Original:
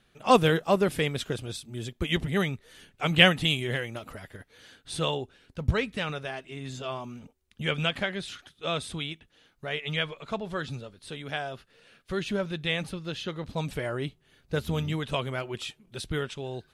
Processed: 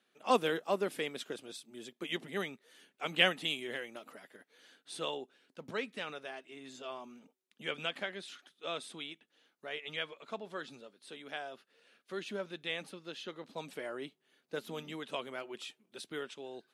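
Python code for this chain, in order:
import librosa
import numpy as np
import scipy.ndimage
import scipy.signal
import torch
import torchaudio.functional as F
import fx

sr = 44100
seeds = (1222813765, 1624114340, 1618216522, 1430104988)

y = scipy.signal.sosfilt(scipy.signal.butter(4, 230.0, 'highpass', fs=sr, output='sos'), x)
y = F.gain(torch.from_numpy(y), -8.5).numpy()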